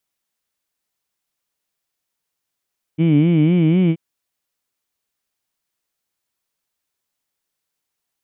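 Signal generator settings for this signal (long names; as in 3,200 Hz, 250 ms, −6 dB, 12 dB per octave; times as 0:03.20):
vowel by formant synthesis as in heed, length 0.98 s, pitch 153 Hz, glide +2.5 semitones, vibrato 4 Hz, vibrato depth 1.45 semitones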